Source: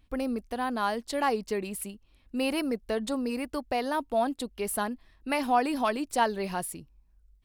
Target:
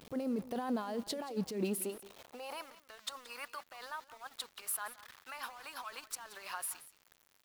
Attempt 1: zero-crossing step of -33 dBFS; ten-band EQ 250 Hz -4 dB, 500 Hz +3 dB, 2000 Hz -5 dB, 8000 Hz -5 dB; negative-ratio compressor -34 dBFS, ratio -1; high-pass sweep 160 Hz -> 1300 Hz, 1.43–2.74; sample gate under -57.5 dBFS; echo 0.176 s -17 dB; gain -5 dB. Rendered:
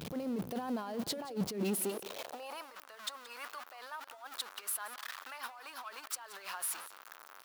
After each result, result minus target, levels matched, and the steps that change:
sample gate: distortion -14 dB; zero-crossing step: distortion +10 dB
change: sample gate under -47.5 dBFS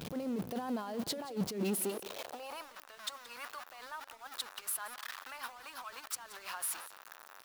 zero-crossing step: distortion +10 dB
change: zero-crossing step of -44.5 dBFS

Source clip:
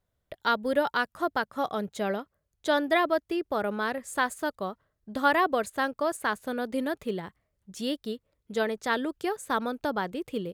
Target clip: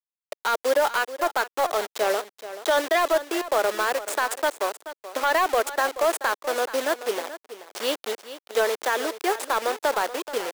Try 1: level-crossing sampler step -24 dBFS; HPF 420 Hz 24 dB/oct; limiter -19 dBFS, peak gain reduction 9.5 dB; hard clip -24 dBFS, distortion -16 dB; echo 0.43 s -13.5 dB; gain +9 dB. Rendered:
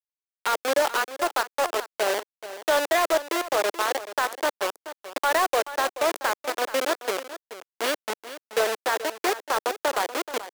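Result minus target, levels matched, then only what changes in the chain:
level-crossing sampler: distortion +9 dB
change: level-crossing sampler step -32 dBFS

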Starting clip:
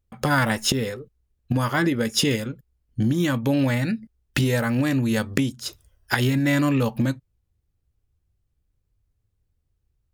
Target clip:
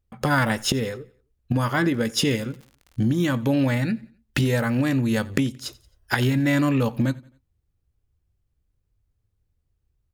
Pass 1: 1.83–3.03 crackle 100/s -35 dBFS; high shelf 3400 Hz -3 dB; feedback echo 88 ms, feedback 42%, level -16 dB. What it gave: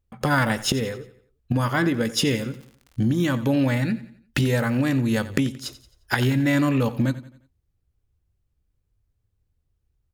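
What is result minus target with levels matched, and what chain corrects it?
echo-to-direct +7 dB
1.83–3.03 crackle 100/s -35 dBFS; high shelf 3400 Hz -3 dB; feedback echo 88 ms, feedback 42%, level -23 dB

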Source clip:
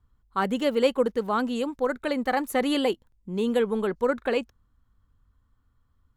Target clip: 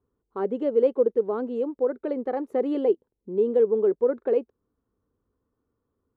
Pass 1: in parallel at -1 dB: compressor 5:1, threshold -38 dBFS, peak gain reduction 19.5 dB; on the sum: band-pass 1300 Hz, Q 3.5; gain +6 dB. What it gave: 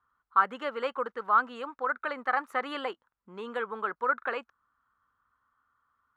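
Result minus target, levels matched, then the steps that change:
1000 Hz band +15.5 dB
change: band-pass 410 Hz, Q 3.5

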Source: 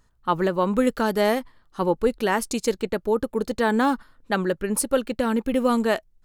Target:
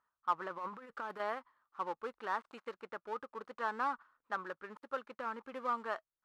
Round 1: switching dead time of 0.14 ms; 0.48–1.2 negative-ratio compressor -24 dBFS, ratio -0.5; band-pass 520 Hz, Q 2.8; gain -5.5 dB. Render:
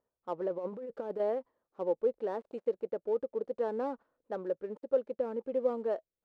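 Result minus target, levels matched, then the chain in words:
1000 Hz band -11.5 dB
switching dead time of 0.14 ms; 0.48–1.2 negative-ratio compressor -24 dBFS, ratio -0.5; band-pass 1200 Hz, Q 2.8; gain -5.5 dB

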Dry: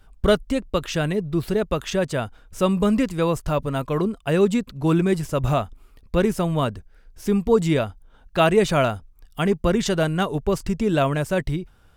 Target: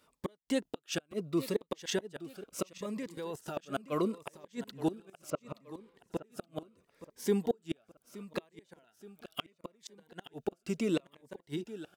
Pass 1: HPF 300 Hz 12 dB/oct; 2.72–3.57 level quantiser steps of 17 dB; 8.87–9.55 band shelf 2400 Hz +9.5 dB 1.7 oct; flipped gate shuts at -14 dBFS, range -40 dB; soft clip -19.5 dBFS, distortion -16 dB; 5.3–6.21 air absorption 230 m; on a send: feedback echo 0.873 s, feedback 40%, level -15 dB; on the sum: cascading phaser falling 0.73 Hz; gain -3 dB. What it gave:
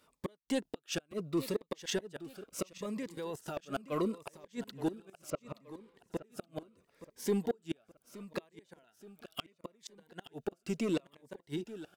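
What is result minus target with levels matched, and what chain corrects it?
soft clip: distortion +16 dB
HPF 300 Hz 12 dB/oct; 2.72–3.57 level quantiser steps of 17 dB; 8.87–9.55 band shelf 2400 Hz +9.5 dB 1.7 oct; flipped gate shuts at -14 dBFS, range -40 dB; soft clip -9.5 dBFS, distortion -31 dB; 5.3–6.21 air absorption 230 m; on a send: feedback echo 0.873 s, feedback 40%, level -15 dB; on the sum: cascading phaser falling 0.73 Hz; gain -3 dB

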